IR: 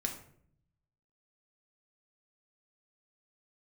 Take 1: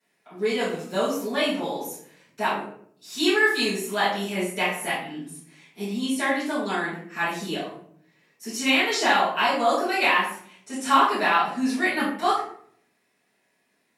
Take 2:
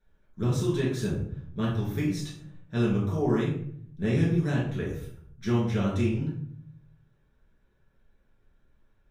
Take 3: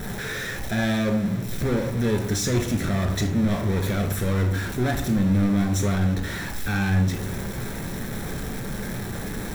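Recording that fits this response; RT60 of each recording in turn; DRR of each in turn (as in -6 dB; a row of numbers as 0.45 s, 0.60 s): 3; 0.60 s, 0.60 s, 0.60 s; -15.5 dB, -6.5 dB, 3.0 dB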